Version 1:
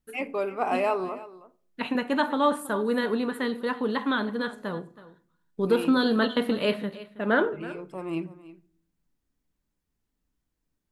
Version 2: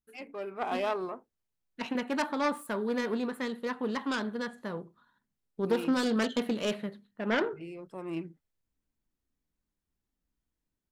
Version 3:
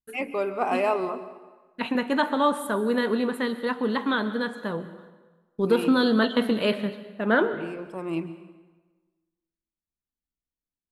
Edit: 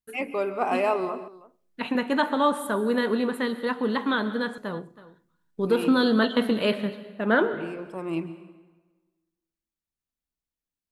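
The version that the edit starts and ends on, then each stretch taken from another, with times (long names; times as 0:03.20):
3
0:01.28–0:01.88: punch in from 1
0:04.58–0:05.80: punch in from 1
not used: 2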